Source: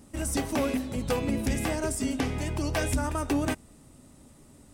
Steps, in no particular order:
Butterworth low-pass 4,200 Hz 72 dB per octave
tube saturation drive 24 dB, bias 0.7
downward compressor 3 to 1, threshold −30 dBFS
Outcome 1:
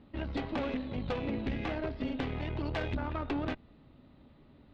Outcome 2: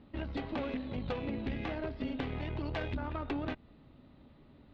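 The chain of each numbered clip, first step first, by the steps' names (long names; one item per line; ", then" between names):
Butterworth low-pass, then tube saturation, then downward compressor
downward compressor, then Butterworth low-pass, then tube saturation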